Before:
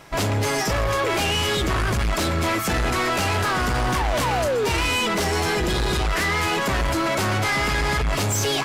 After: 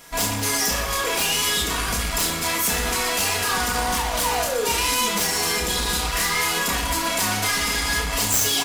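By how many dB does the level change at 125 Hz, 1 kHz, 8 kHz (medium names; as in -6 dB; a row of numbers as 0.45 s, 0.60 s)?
-8.0 dB, -1.0 dB, +8.0 dB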